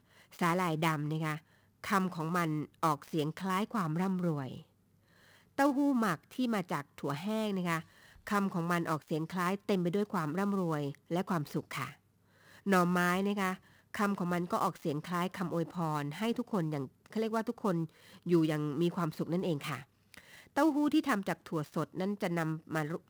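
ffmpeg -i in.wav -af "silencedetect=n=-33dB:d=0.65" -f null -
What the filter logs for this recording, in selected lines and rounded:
silence_start: 4.48
silence_end: 5.58 | silence_duration: 1.11
silence_start: 11.85
silence_end: 12.67 | silence_duration: 0.81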